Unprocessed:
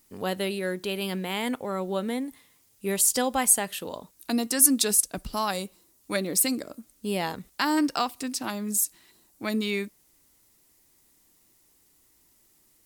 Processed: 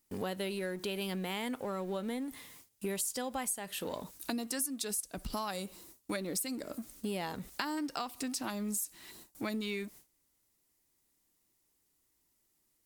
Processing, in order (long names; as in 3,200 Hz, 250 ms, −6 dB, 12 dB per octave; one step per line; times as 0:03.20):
mu-law and A-law mismatch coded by mu
noise gate with hold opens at −43 dBFS
downward compressor 6 to 1, threshold −34 dBFS, peak gain reduction 20 dB